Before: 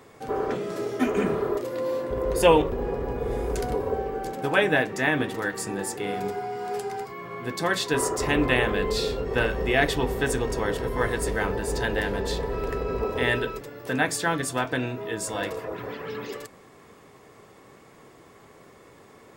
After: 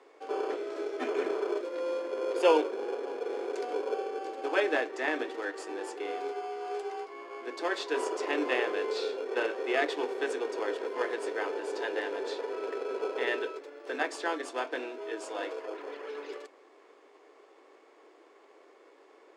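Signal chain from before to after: in parallel at -7 dB: sample-and-hold 23×; on the sum: steep high-pass 310 Hz 48 dB/oct; air absorption 92 m; gain -7 dB

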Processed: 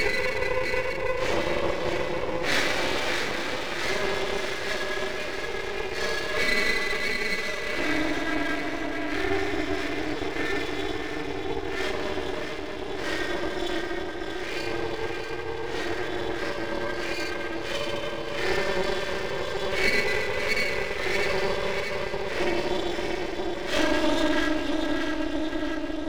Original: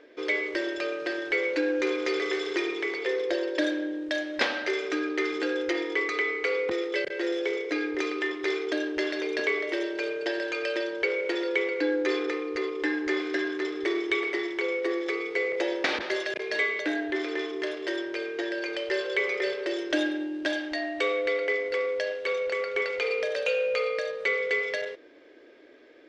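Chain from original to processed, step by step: Paulstretch 5.2×, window 0.05 s, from 15.36; echo with dull and thin repeats by turns 0.317 s, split 900 Hz, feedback 81%, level -5 dB; half-wave rectifier; gain +4 dB

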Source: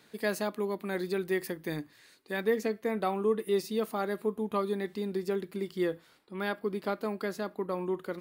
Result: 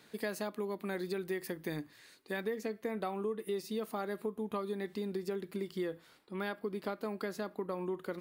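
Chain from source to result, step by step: compressor 4:1, threshold -34 dBFS, peak gain reduction 10.5 dB

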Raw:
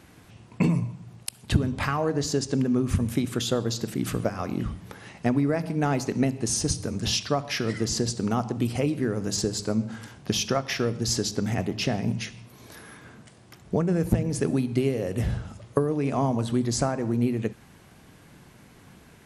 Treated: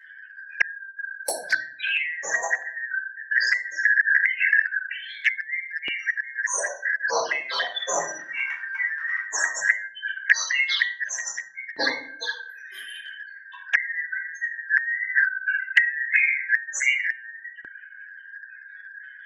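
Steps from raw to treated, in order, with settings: four-band scrambler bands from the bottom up 4123; 14.89–15.5 bell 2500 Hz +1.5 dB -> +12 dB 0.53 oct; spectral gate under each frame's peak -10 dB strong; 7.45–9.18 transient shaper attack -1 dB, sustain +11 dB; bell 160 Hz +13 dB 0.21 oct; shoebox room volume 570 m³, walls furnished, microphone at 4.9 m; envelope flanger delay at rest 11.5 ms, full sweep at -18 dBFS; vocal rider within 3 dB 0.5 s; LFO high-pass saw up 0.17 Hz 320–3100 Hz; gain +2.5 dB

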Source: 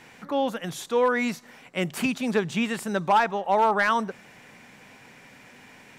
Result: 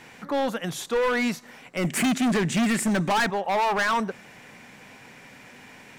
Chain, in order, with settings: 1.84–3.3 ten-band EQ 250 Hz +11 dB, 1000 Hz -4 dB, 2000 Hz +11 dB, 4000 Hz -4 dB, 8000 Hz +9 dB; hard clip -22.5 dBFS, distortion -5 dB; gain +2.5 dB

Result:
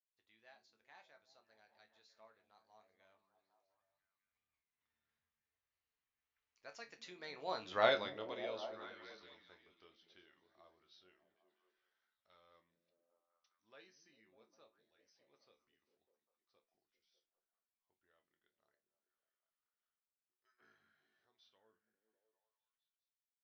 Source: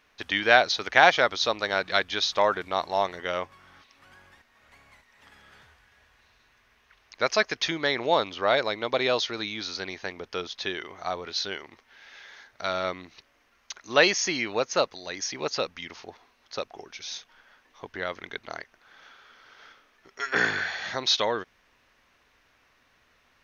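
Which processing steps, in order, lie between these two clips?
Doppler pass-by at 7.84, 27 m/s, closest 2.7 m; resonator bank D2 major, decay 0.21 s; delay with a stepping band-pass 0.2 s, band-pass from 180 Hz, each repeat 0.7 oct, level -5 dB; gain +1.5 dB

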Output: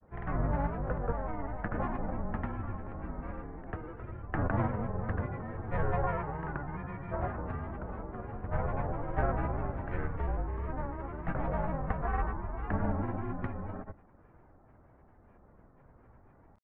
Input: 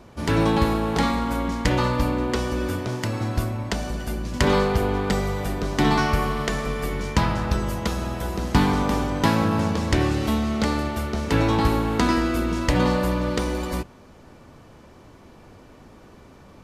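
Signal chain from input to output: mistuned SSB -280 Hz 160–2000 Hz; grains, pitch spread up and down by 3 st; gain -8 dB

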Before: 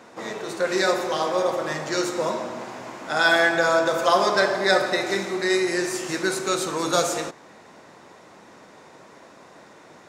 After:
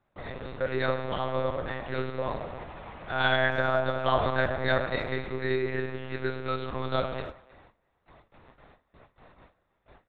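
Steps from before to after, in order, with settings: gate with hold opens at -37 dBFS; monotone LPC vocoder at 8 kHz 130 Hz; speakerphone echo 0.31 s, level -22 dB; gain -6 dB

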